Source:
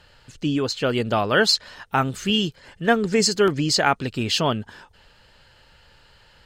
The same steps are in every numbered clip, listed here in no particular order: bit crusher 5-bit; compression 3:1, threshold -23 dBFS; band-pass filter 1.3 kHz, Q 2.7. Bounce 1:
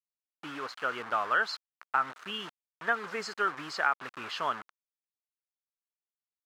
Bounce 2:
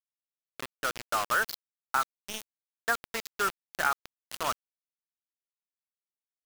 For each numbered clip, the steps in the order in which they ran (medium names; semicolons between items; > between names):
bit crusher > band-pass filter > compression; band-pass filter > bit crusher > compression